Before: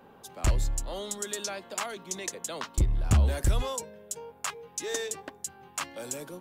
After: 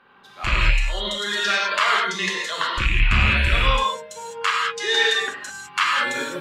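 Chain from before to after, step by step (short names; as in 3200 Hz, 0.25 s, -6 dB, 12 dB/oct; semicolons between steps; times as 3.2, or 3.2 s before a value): rattling part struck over -25 dBFS, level -21 dBFS; harmonic-percussive split percussive -4 dB; in parallel at -2 dB: compressor, threshold -39 dBFS, peak gain reduction 19 dB; on the sum: high shelf 5300 Hz -10.5 dB; reverb, pre-delay 3 ms, DRR -3.5 dB; spectral noise reduction 9 dB; band shelf 2200 Hz +15.5 dB 2.5 oct; AGC gain up to 7.5 dB; gain -4 dB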